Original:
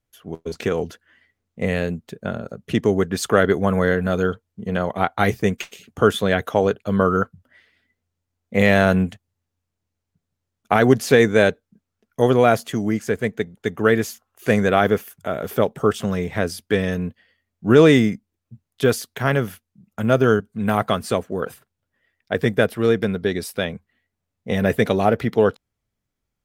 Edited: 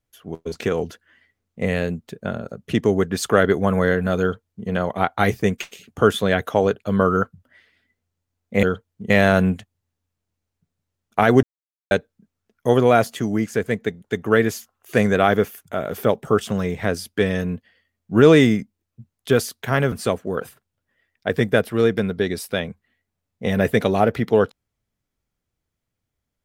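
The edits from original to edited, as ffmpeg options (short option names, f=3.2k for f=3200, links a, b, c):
-filter_complex "[0:a]asplit=6[a][b][c][d][e][f];[a]atrim=end=8.632[g];[b]atrim=start=4.208:end=4.682[h];[c]atrim=start=8.628:end=10.96,asetpts=PTS-STARTPTS,afade=t=out:st=2.328:d=0.004:c=hsin[i];[d]atrim=start=10.96:end=11.44,asetpts=PTS-STARTPTS,volume=0[j];[e]atrim=start=11.44:end=19.452,asetpts=PTS-STARTPTS,afade=t=in:d=0.004:c=hsin[k];[f]atrim=start=20.968[l];[g][h]acrossfade=d=0.004:c1=hsin:c2=hsin[m];[i][j][k]concat=n=3:v=0:a=1[n];[m][n]acrossfade=d=0.004:c1=hsin:c2=hsin[o];[o][l]acrossfade=d=0.004:c1=hsin:c2=hsin"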